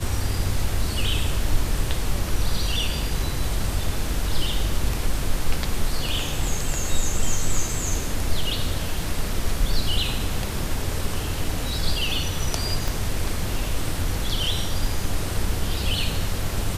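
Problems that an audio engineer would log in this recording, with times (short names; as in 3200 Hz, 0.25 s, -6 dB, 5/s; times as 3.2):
12.88 pop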